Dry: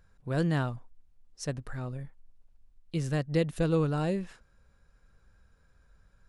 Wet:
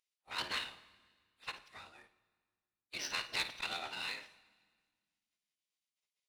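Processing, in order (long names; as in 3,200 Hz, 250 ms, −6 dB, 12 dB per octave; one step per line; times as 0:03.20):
high-pass filter 95 Hz 24 dB per octave
gate on every frequency bin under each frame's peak −25 dB weak
parametric band 3,300 Hz +5 dB 1.7 octaves
phase-vocoder pitch shift with formants kept −11 semitones
power curve on the samples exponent 1.4
flutter between parallel walls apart 9.5 metres, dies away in 0.26 s
convolution reverb RT60 1.6 s, pre-delay 7 ms, DRR 15.5 dB
saturating transformer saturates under 2,700 Hz
level +11.5 dB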